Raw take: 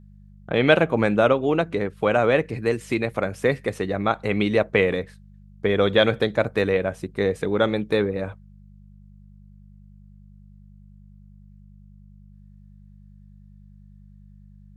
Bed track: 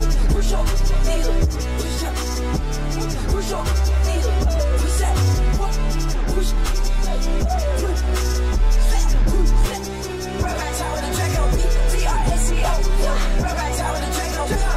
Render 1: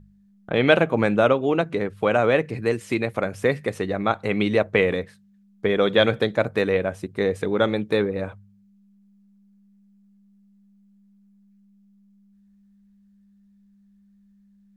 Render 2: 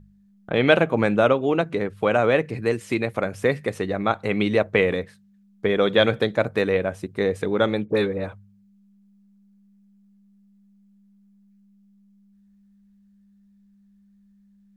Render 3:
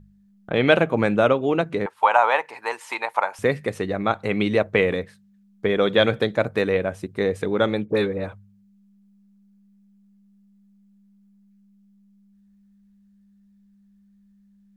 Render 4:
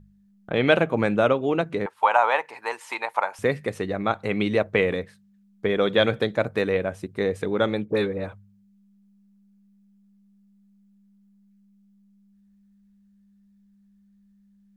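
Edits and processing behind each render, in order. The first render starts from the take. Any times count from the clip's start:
de-hum 50 Hz, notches 3
7.85–8.27 dispersion highs, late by 51 ms, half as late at 1500 Hz
1.86–3.39 resonant high-pass 900 Hz, resonance Q 10
gain -2 dB

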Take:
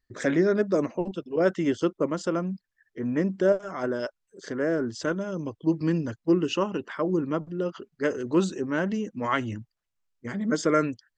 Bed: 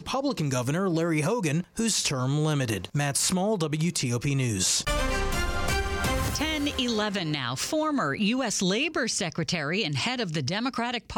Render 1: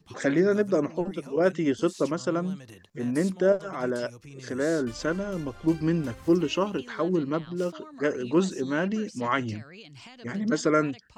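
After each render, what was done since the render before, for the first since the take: add bed -19.5 dB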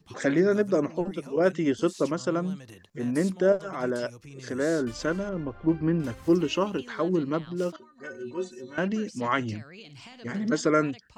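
5.29–6 LPF 1900 Hz; 7.76–8.78 metallic resonator 110 Hz, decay 0.3 s, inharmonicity 0.03; 9.73–10.52 flutter echo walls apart 9.4 m, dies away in 0.29 s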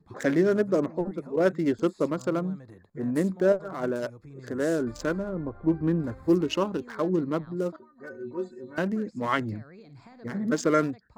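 Wiener smoothing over 15 samples; high shelf 8200 Hz +8 dB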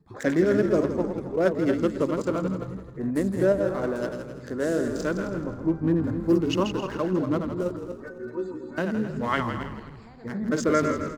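regenerating reverse delay 0.132 s, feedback 44%, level -6.5 dB; frequency-shifting echo 0.164 s, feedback 35%, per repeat -61 Hz, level -9.5 dB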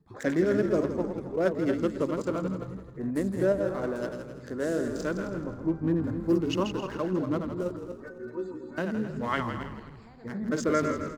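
gain -3.5 dB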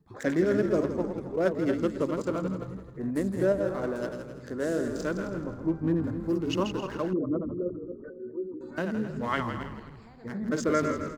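6.08–6.48 compressor 1.5:1, threshold -29 dBFS; 7.13–8.61 formant sharpening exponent 2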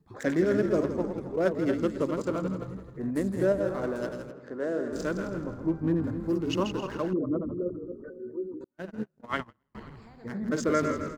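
4.31–4.93 band-pass 710 Hz, Q 0.5; 8.64–9.75 gate -29 dBFS, range -42 dB

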